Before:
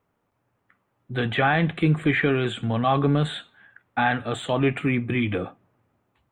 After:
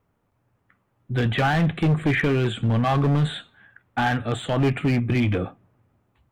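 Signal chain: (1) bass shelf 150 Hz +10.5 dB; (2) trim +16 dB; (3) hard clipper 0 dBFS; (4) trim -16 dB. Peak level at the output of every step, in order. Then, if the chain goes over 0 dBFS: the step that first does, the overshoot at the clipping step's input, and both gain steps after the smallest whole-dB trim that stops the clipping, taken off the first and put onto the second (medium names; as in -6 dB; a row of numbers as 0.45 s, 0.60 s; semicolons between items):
-6.5 dBFS, +9.5 dBFS, 0.0 dBFS, -16.0 dBFS; step 2, 9.5 dB; step 2 +6 dB, step 4 -6 dB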